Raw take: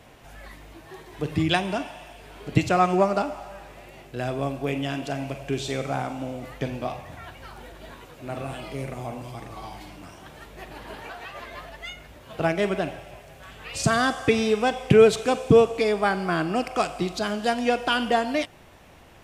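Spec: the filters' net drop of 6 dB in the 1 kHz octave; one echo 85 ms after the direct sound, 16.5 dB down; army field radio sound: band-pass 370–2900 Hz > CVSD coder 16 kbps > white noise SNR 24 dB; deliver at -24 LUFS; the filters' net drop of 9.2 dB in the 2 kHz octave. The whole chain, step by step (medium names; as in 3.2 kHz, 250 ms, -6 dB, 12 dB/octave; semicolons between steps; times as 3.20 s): band-pass 370–2900 Hz; peaking EQ 1 kHz -7 dB; peaking EQ 2 kHz -9 dB; delay 85 ms -16.5 dB; CVSD coder 16 kbps; white noise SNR 24 dB; trim +6 dB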